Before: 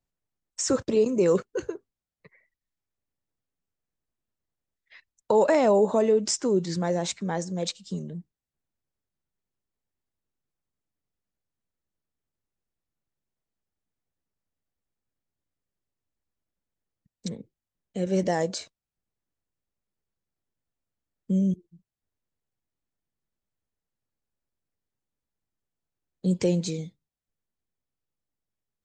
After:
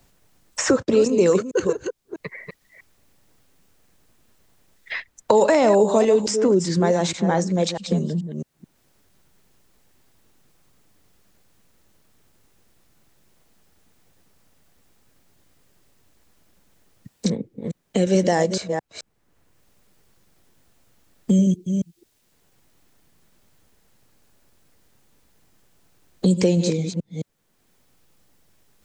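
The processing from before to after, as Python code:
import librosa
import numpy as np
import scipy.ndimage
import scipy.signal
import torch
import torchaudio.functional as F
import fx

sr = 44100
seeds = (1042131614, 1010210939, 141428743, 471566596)

y = fx.reverse_delay(x, sr, ms=216, wet_db=-10)
y = fx.band_squash(y, sr, depth_pct=70)
y = y * librosa.db_to_amplitude(6.5)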